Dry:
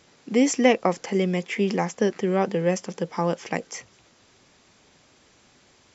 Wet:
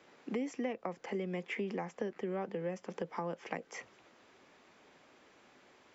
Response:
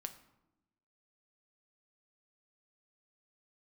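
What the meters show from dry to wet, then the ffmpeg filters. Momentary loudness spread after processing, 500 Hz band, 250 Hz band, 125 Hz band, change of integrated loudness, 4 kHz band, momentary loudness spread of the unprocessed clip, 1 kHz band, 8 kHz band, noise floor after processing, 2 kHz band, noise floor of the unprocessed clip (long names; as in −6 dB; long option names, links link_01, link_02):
5 LU, −15.0 dB, −16.0 dB, −16.0 dB, −15.5 dB, −18.0 dB, 11 LU, −14.5 dB, can't be measured, −64 dBFS, −13.5 dB, −59 dBFS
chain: -filter_complex "[0:a]acrossover=split=220 2900:gain=0.2 1 0.224[link_01][link_02][link_03];[link_01][link_02][link_03]amix=inputs=3:normalize=0,acrossover=split=130[link_04][link_05];[link_05]acompressor=threshold=-34dB:ratio=8[link_06];[link_04][link_06]amix=inputs=2:normalize=0,volume=-1.5dB"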